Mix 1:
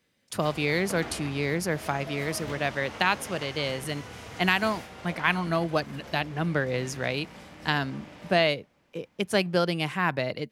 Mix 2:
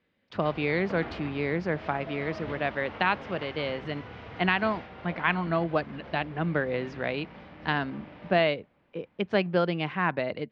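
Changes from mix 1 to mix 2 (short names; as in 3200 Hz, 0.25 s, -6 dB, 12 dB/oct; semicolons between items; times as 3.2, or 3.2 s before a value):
speech: add bell 130 Hz -7.5 dB 0.26 oct; master: add Bessel low-pass 2500 Hz, order 6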